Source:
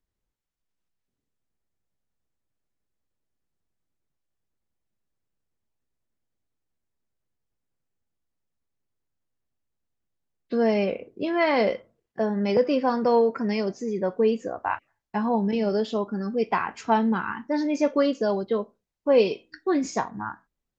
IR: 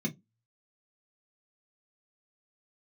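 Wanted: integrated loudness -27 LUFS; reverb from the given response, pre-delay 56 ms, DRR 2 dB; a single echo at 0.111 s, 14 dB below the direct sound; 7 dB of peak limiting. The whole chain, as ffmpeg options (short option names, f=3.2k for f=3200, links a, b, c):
-filter_complex "[0:a]alimiter=limit=-15.5dB:level=0:latency=1,aecho=1:1:111:0.2,asplit=2[a][b];[1:a]atrim=start_sample=2205,adelay=56[c];[b][c]afir=irnorm=-1:irlink=0,volume=-5.5dB[d];[a][d]amix=inputs=2:normalize=0,volume=-12dB"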